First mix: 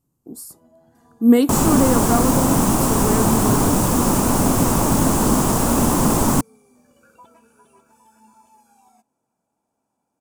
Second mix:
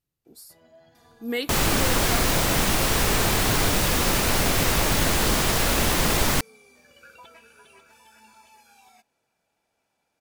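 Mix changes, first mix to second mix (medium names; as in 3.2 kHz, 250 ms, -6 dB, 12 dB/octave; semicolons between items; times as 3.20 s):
speech -7.0 dB; first sound +5.0 dB; master: add graphic EQ 125/250/1000/2000/4000/8000 Hz -5/-12/-9/+10/+9/-7 dB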